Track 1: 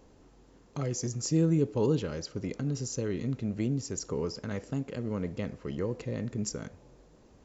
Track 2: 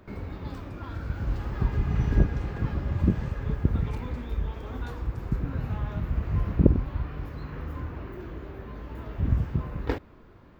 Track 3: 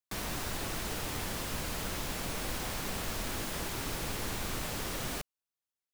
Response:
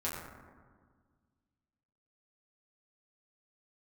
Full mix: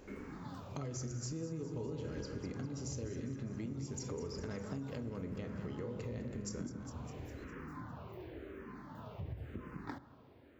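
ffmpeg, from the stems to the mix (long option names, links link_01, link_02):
-filter_complex "[0:a]volume=-1dB,asplit=3[link_01][link_02][link_03];[link_02]volume=-12.5dB[link_04];[link_03]volume=-14.5dB[link_05];[1:a]highpass=120,asplit=2[link_06][link_07];[link_07]afreqshift=-0.95[link_08];[link_06][link_08]amix=inputs=2:normalize=1,volume=-4.5dB,asplit=2[link_09][link_10];[link_10]volume=-22.5dB[link_11];[link_01][link_09]amix=inputs=2:normalize=0,acompressor=threshold=-41dB:ratio=2.5,volume=0dB[link_12];[3:a]atrim=start_sample=2205[link_13];[link_04][link_11]amix=inputs=2:normalize=0[link_14];[link_14][link_13]afir=irnorm=-1:irlink=0[link_15];[link_05]aecho=0:1:203|406|609|812|1015|1218|1421|1624:1|0.54|0.292|0.157|0.085|0.0459|0.0248|0.0134[link_16];[link_12][link_15][link_16]amix=inputs=3:normalize=0,acompressor=threshold=-38dB:ratio=6"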